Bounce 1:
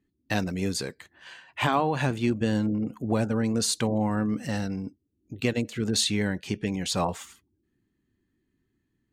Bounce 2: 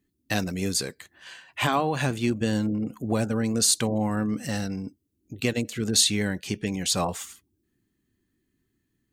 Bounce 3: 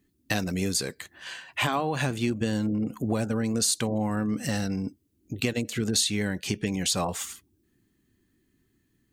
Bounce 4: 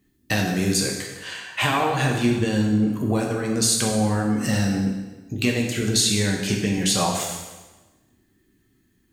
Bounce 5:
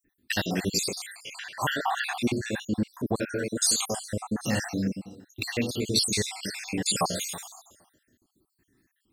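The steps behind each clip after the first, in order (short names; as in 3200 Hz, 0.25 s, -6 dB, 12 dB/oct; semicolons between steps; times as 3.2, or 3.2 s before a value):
high shelf 5200 Hz +10 dB; notch 910 Hz, Q 16
compressor 2.5:1, threshold -31 dBFS, peak gain reduction 10.5 dB; gain +5 dB
plate-style reverb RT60 1.2 s, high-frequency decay 0.9×, DRR -1 dB; gain +2.5 dB
random spectral dropouts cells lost 64%; low shelf 250 Hz -7.5 dB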